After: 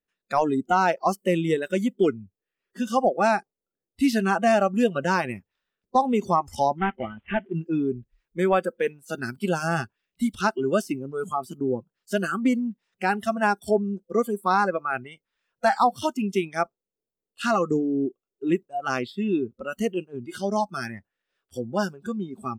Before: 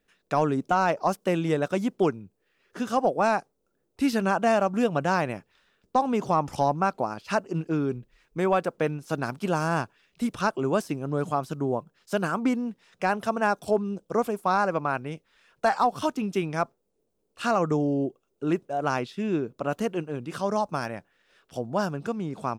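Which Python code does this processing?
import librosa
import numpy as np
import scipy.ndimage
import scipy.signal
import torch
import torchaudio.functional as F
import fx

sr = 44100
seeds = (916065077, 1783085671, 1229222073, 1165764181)

y = fx.cvsd(x, sr, bps=16000, at=(6.78, 7.54))
y = fx.noise_reduce_blind(y, sr, reduce_db=20)
y = F.gain(torch.from_numpy(y), 3.0).numpy()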